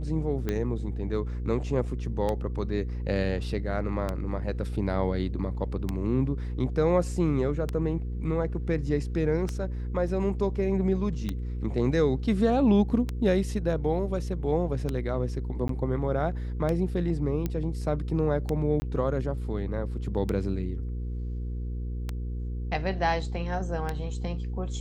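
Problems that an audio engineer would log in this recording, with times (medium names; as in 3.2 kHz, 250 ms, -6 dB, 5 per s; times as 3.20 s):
hum 60 Hz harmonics 8 -32 dBFS
tick 33 1/3 rpm -16 dBFS
15.68–15.69 s: dropout 13 ms
17.46 s: pop -16 dBFS
18.80–18.82 s: dropout 20 ms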